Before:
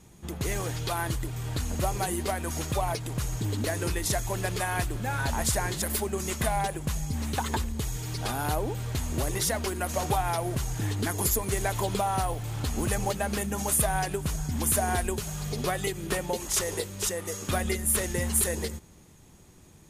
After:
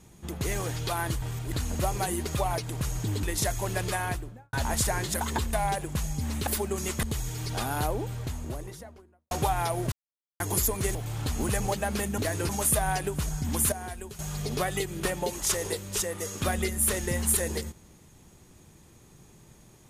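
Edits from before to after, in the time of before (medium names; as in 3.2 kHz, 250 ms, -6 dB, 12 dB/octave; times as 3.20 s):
1.22–1.53 s: reverse
2.27–2.64 s: delete
3.60–3.91 s: move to 13.56 s
4.62–5.21 s: studio fade out
5.89–6.45 s: swap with 7.39–7.71 s
8.39–9.99 s: studio fade out
10.60–11.08 s: mute
11.63–12.33 s: delete
14.79–15.26 s: gain -10.5 dB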